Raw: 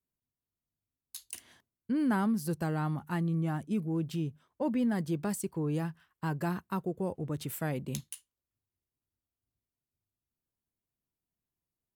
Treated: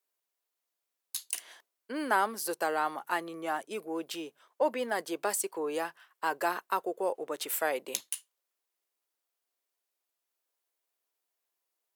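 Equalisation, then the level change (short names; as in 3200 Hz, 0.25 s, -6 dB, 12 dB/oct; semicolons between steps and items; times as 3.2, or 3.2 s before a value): HPF 450 Hz 24 dB/oct; +8.0 dB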